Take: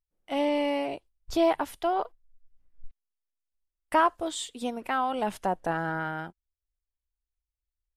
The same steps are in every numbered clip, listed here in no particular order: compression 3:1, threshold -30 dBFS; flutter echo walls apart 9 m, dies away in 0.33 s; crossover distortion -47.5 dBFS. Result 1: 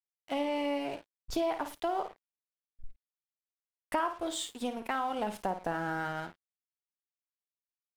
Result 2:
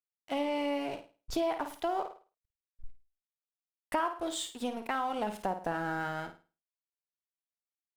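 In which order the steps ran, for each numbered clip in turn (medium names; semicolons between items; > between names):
flutter echo > crossover distortion > compression; crossover distortion > flutter echo > compression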